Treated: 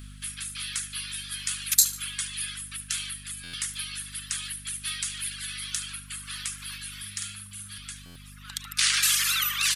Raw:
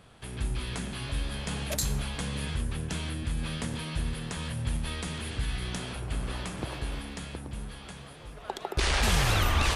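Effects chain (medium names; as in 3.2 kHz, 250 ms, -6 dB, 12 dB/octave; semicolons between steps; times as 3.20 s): steep high-pass 1.2 kHz 48 dB/octave; tilt EQ +4.5 dB/octave; hum 50 Hz, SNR 13 dB; reverb removal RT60 1.8 s; 6.98–7.78 s: doubling 50 ms -3.5 dB; feedback delay 73 ms, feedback 42%, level -15 dB; buffer glitch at 3.43/8.05 s, samples 512, times 8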